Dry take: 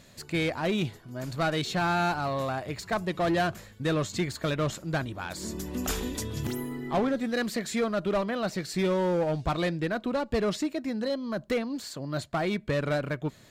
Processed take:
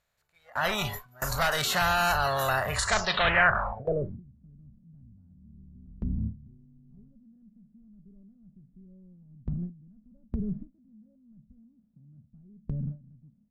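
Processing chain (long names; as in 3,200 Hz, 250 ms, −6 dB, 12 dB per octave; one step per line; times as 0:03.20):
compressor on every frequency bin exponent 0.4
automatic gain control gain up to 9.5 dB
high-shelf EQ 2,400 Hz −11 dB
in parallel at −4 dB: hard clipping −17.5 dBFS, distortion −8 dB
on the sum: low-pass filter sweep 13,000 Hz → 230 Hz, 0:02.71–0:04.21
noise reduction from a noise print of the clip's start 19 dB
guitar amp tone stack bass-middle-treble 10-0-10
noise gate with hold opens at −19 dBFS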